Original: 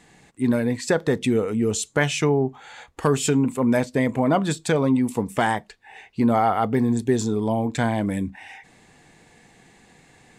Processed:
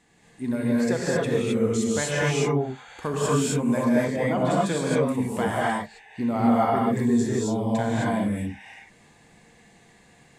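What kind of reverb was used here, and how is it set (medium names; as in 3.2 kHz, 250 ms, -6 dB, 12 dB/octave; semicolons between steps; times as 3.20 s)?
gated-style reverb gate 290 ms rising, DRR -6.5 dB; trim -9 dB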